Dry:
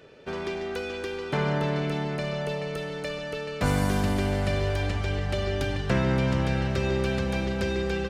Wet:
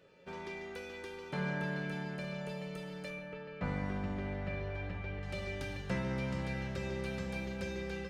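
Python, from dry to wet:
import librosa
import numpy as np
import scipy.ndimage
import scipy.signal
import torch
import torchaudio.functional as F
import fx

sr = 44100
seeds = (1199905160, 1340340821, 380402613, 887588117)

y = fx.lowpass(x, sr, hz=2300.0, slope=12, at=(3.1, 5.23))
y = fx.comb_fb(y, sr, f0_hz=180.0, decay_s=0.64, harmonics='odd', damping=0.0, mix_pct=90)
y = y * librosa.db_to_amplitude(5.5)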